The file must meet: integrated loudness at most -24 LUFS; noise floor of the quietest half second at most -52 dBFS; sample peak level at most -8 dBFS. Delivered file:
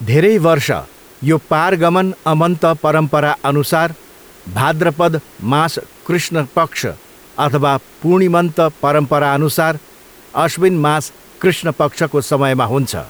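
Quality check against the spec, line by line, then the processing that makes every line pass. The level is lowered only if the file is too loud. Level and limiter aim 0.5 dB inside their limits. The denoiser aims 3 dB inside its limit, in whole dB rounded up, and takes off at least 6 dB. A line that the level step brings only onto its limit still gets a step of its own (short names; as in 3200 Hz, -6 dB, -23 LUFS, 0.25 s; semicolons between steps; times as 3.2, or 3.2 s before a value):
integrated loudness -15.0 LUFS: fail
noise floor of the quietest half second -42 dBFS: fail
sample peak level -2.5 dBFS: fail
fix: denoiser 6 dB, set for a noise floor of -42 dBFS; gain -9.5 dB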